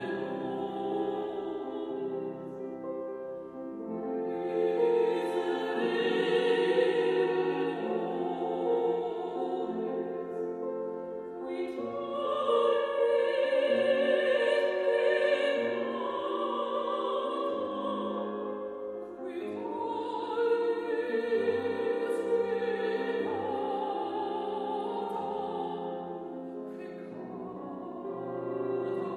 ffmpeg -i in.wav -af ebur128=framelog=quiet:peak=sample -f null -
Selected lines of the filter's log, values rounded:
Integrated loudness:
  I:         -31.3 LUFS
  Threshold: -41.4 LUFS
Loudness range:
  LRA:         8.8 LU
  Threshold: -51.1 LUFS
  LRA low:   -36.5 LUFS
  LRA high:  -27.7 LUFS
Sample peak:
  Peak:      -13.9 dBFS